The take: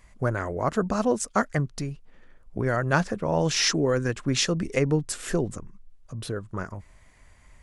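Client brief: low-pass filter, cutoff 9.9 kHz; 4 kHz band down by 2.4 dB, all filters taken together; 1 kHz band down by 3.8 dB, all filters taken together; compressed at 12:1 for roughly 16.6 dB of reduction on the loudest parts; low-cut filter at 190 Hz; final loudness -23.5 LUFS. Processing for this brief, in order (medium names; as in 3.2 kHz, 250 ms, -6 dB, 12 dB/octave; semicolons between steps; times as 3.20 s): high-pass 190 Hz; low-pass 9.9 kHz; peaking EQ 1 kHz -5 dB; peaking EQ 4 kHz -3 dB; compression 12:1, threshold -37 dBFS; trim +19 dB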